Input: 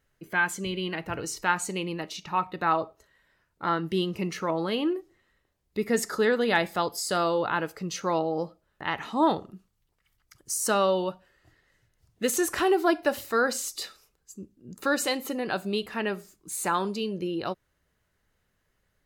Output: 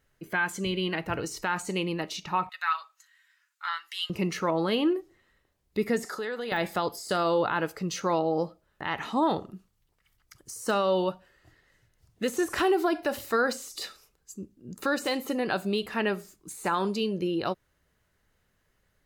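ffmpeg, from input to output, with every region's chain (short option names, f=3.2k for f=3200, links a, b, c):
-filter_complex "[0:a]asettb=1/sr,asplit=3[a][b][c];[a]atrim=end=2.494[d];[b]atrim=start=2.49:end=4.1,asetpts=PTS-STARTPTS,afade=t=in:d=0.004:c=qsin,afade=t=out:st=1.606:d=0.004:c=qsin,highpass=f=1.4k:w=0.5412,highpass=f=1.4k:w=1.3066,equalizer=f=7k:w=3.1:g=5.5,aecho=1:1:7:0.46,atrim=end_sample=71001[e];[c]atrim=start=4.096[f];[d][e]acrossfade=d=0.004:c1=hsin:c2=qsin[g];[g][f]acrossfade=d=0.004:c1=qsin:c2=hsin,asettb=1/sr,asplit=3[h][i][j];[h]atrim=end=6.054[k];[i]atrim=start=6.05:end=6.52,asetpts=PTS-STARTPTS,afade=t=in:d=0.004:c=qsin,afade=t=out:st=0.466:d=0.004:c=qsin,highpass=f=440:p=1,acompressor=threshold=-36dB:ratio=2.5:attack=3.2:release=140:knee=1:detection=peak,aeval=exprs='val(0)+0.000794*sin(2*PI*750*n/s)':c=same[l];[j]atrim=start=6.516[m];[k][l]acrossfade=d=0.004:c1=hsin:c2=qsin[n];[n][m]acrossfade=d=0.004:c1=qsin:c2=hsin,deesser=0.75,alimiter=limit=-18.5dB:level=0:latency=1:release=67,volume=2dB"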